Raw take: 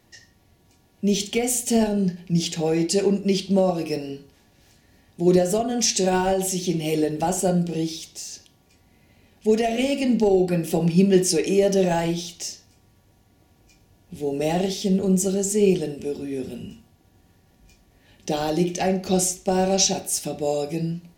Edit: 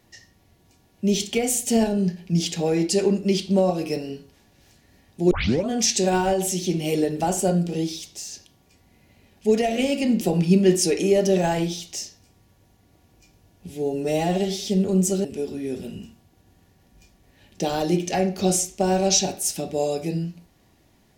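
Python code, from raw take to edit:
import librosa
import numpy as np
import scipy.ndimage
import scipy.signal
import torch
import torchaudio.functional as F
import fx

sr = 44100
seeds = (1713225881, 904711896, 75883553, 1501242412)

y = fx.edit(x, sr, fx.tape_start(start_s=5.31, length_s=0.37),
    fx.cut(start_s=10.21, length_s=0.47),
    fx.stretch_span(start_s=14.15, length_s=0.65, factor=1.5),
    fx.cut(start_s=15.39, length_s=0.53), tone=tone)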